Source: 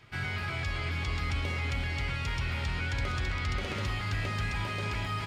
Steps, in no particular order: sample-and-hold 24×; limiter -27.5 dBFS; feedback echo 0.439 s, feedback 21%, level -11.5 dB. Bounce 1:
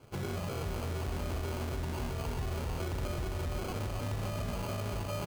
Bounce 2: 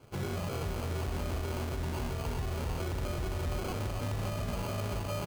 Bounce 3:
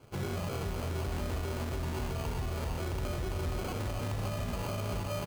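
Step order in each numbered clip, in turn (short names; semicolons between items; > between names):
feedback echo > limiter > sample-and-hold; feedback echo > sample-and-hold > limiter; sample-and-hold > feedback echo > limiter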